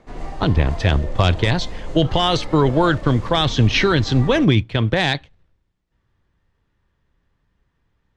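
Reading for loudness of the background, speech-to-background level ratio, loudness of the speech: -34.0 LUFS, 15.5 dB, -18.5 LUFS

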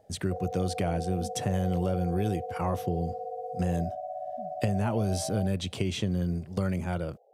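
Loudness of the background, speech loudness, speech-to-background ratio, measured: -37.5 LUFS, -31.0 LUFS, 6.5 dB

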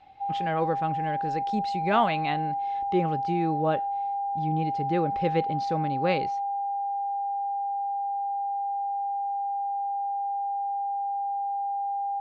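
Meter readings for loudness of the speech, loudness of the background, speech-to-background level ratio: -29.5 LUFS, -30.0 LUFS, 0.5 dB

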